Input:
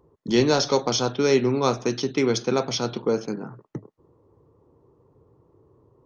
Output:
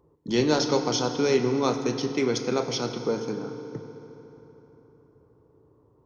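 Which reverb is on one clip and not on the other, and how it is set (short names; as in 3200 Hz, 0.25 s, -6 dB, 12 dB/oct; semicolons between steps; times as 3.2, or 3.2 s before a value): FDN reverb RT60 3.9 s, high-frequency decay 0.65×, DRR 7 dB; gain -3.5 dB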